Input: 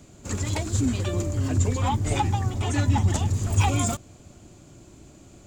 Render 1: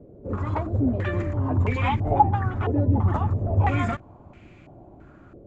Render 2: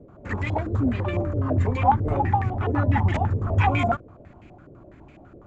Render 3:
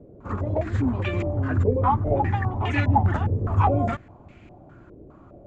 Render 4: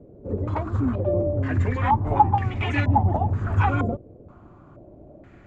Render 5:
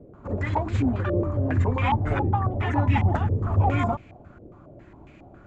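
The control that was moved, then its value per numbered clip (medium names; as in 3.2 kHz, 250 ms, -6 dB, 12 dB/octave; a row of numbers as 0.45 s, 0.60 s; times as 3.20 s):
step-sequenced low-pass, rate: 3 Hz, 12 Hz, 4.9 Hz, 2.1 Hz, 7.3 Hz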